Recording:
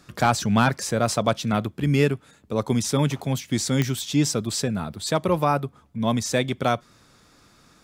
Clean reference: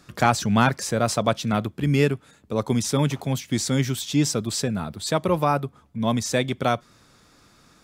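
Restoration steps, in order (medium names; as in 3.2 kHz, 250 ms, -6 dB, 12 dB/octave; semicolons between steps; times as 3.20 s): clip repair -8.5 dBFS; de-click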